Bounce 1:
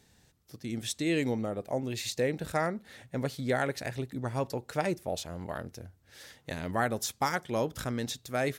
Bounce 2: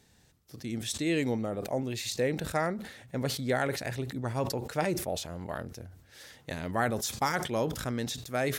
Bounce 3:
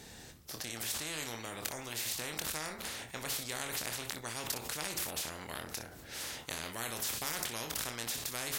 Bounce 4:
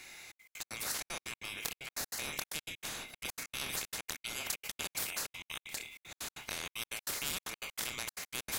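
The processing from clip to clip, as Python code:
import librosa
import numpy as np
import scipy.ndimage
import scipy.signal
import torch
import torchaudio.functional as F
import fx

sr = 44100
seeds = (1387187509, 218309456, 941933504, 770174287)

y1 = fx.sustainer(x, sr, db_per_s=81.0)
y2 = fx.room_early_taps(y1, sr, ms=(26, 61), db=(-7.5, -15.5))
y2 = fx.spectral_comp(y2, sr, ratio=4.0)
y3 = fx.band_swap(y2, sr, width_hz=2000)
y3 = fx.step_gate(y3, sr, bpm=191, pattern='xxxx.x.x.', floor_db=-60.0, edge_ms=4.5)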